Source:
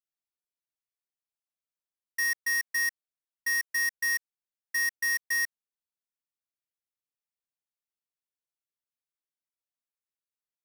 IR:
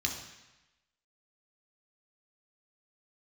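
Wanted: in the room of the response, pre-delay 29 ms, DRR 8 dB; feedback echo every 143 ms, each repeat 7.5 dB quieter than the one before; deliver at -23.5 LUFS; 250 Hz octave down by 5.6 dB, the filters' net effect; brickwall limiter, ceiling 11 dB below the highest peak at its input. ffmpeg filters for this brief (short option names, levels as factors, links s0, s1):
-filter_complex "[0:a]equalizer=f=250:t=o:g=-8,alimiter=level_in=3.98:limit=0.0631:level=0:latency=1,volume=0.251,aecho=1:1:143|286|429|572|715:0.422|0.177|0.0744|0.0312|0.0131,asplit=2[s0][s1];[1:a]atrim=start_sample=2205,adelay=29[s2];[s1][s2]afir=irnorm=-1:irlink=0,volume=0.224[s3];[s0][s3]amix=inputs=2:normalize=0,volume=4.73"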